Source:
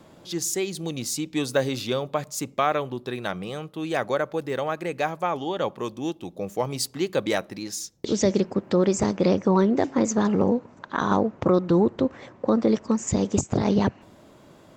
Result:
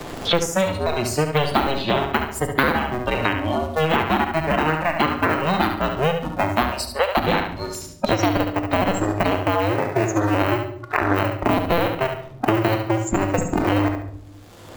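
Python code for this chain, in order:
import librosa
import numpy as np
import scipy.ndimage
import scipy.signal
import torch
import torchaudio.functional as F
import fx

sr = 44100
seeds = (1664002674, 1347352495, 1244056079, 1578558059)

p1 = fx.cycle_switch(x, sr, every=2, mode='inverted')
p2 = fx.rider(p1, sr, range_db=4, speed_s=2.0)
p3 = fx.noise_reduce_blind(p2, sr, reduce_db=18)
p4 = fx.steep_highpass(p3, sr, hz=490.0, slope=36, at=(6.71, 7.17))
p5 = p4 + fx.echo_feedback(p4, sr, ms=70, feedback_pct=24, wet_db=-8.0, dry=0)
p6 = fx.room_shoebox(p5, sr, seeds[0], volume_m3=650.0, walls='furnished', distance_m=0.82)
p7 = fx.band_squash(p6, sr, depth_pct=100)
y = p7 * librosa.db_to_amplitude(1.5)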